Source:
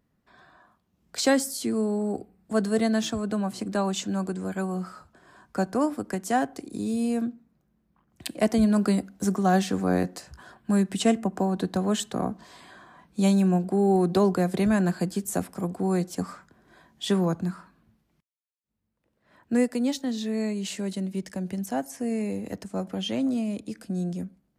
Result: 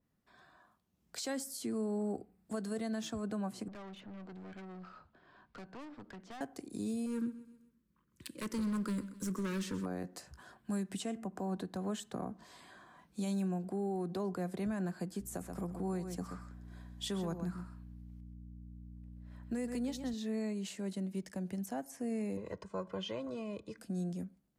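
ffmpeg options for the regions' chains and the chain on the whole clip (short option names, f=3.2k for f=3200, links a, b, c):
-filter_complex "[0:a]asettb=1/sr,asplit=3[a][b][c];[a]atrim=end=3.684[d];[b]atrim=start=3.68:end=6.41,asetpts=PTS-STARTPTS,afade=t=in:d=0.004:c=qsin,afade=t=out:st=2.726:d=0.004:c=qsin,lowpass=f=4.1k:w=0.5412,lowpass=f=4.1k:w=1.3066,acrossover=split=1400|2800[e][f][g];[e]acompressor=threshold=-30dB:ratio=4[h];[f]acompressor=threshold=-42dB:ratio=4[i];[g]acompressor=threshold=-58dB:ratio=4[j];[h][i][j]amix=inputs=3:normalize=0,aeval=exprs='(tanh(79.4*val(0)+0.3)-tanh(0.3))/79.4':c=same[k];[c]atrim=start=6.406[l];[d][k]acrossfade=d=0.004:c1=hsin:c2=qsin[m];[m][l]acrossfade=d=0.004:c1=qsin:c2=hsin,asettb=1/sr,asplit=3[n][o][p];[n]atrim=end=7.064[q];[o]atrim=start=7.06:end=9.86,asetpts=PTS-STARTPTS,afade=t=in:d=0.004:c=qsin,afade=t=out:st=2.796:d=0.004:c=qsin,volume=23dB,asoftclip=hard,volume=-23dB,asuperstop=centerf=720:order=4:qfactor=1.7,aecho=1:1:129|258|387|516:0.141|0.0607|0.0261|0.0112,atrim=end_sample=123480[r];[p]atrim=start=9.856[s];[q][r]acrossfade=d=0.004:c1=hsin:c2=qsin[t];[t][s]acrossfade=d=0.004:c1=qsin:c2=hsin,asettb=1/sr,asplit=3[u][v][w];[u]atrim=end=15.204[x];[v]atrim=start=15.2:end=20.14,asetpts=PTS-STARTPTS,afade=t=in:d=0.004:c=qsin,afade=t=out:st=4.936:d=0.004:c=qsin,aeval=exprs='val(0)+0.01*(sin(2*PI*60*n/s)+sin(2*PI*2*60*n/s)/2+sin(2*PI*3*60*n/s)/3+sin(2*PI*4*60*n/s)/4+sin(2*PI*5*60*n/s)/5)':c=same,aecho=1:1:128:0.316,atrim=end_sample=217854[y];[w]atrim=start=20.136[z];[x][y]acrossfade=d=0.004:c1=hsin:c2=qsin[aa];[aa][z]acrossfade=d=0.004:c1=qsin:c2=hsin,asettb=1/sr,asplit=3[ab][ac][ad];[ab]atrim=end=22.374[ae];[ac]atrim=start=22.37:end=23.78,asetpts=PTS-STARTPTS,afade=t=in:d=0.004:c=qsin,afade=t=out:st=1.406:d=0.004:c=qsin,lowpass=4.8k,equalizer=f=1.1k:t=o:w=0.25:g=12,aecho=1:1:2:0.72,atrim=end_sample=62181[af];[ad]atrim=start=23.776[ag];[ae][af]acrossfade=d=0.004:c1=hsin:c2=qsin[ah];[ah][ag]acrossfade=d=0.004:c1=qsin:c2=hsin,highshelf=f=4.3k:g=5.5,alimiter=limit=-21dB:level=0:latency=1:release=169,adynamicequalizer=threshold=0.00282:dfrequency=2400:dqfactor=0.7:tfrequency=2400:tqfactor=0.7:attack=5:release=100:ratio=0.375:range=3.5:mode=cutabove:tftype=highshelf,volume=-8dB"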